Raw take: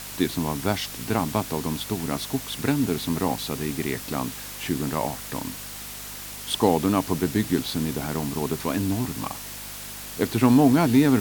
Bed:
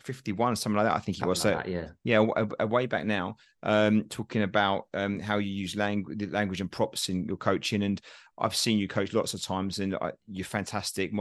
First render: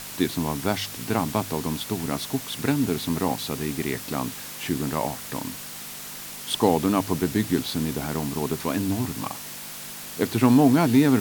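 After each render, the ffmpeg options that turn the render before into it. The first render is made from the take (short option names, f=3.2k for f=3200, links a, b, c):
-af "bandreject=f=50:t=h:w=4,bandreject=f=100:t=h:w=4"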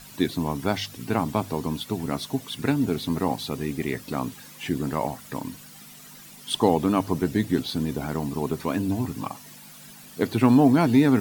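-af "afftdn=nr=12:nf=-38"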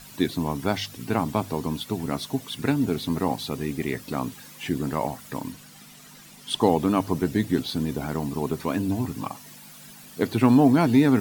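-filter_complex "[0:a]asettb=1/sr,asplit=3[a][b][c];[a]atrim=end=5.524[d];[b]atrim=start=5.52:end=6.6,asetpts=PTS-STARTPTS,afade=t=in:d=0.004:c=qsin,afade=t=out:st=1.076:d=0.004:c=qsin,highshelf=f=11k:g=-7[e];[c]atrim=start=6.596[f];[d][e]acrossfade=d=0.004:c1=hsin:c2=qsin[g];[g][f]acrossfade=d=0.004:c1=qsin:c2=hsin"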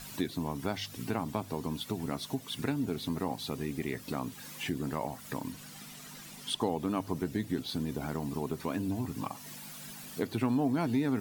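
-af "acompressor=threshold=-36dB:ratio=2"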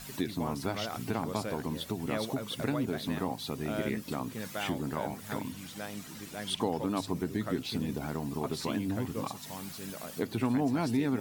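-filter_complex "[1:a]volume=-13dB[a];[0:a][a]amix=inputs=2:normalize=0"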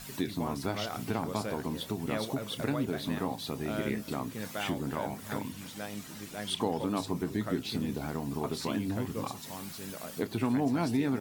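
-filter_complex "[0:a]asplit=2[a][b];[b]adelay=29,volume=-13.5dB[c];[a][c]amix=inputs=2:normalize=0,aecho=1:1:297:0.0944"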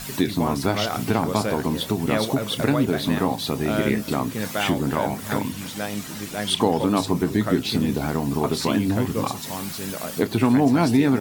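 -af "volume=11dB"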